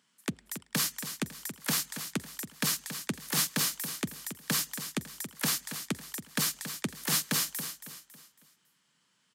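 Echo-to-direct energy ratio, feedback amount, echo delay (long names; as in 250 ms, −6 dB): −9.5 dB, 38%, 276 ms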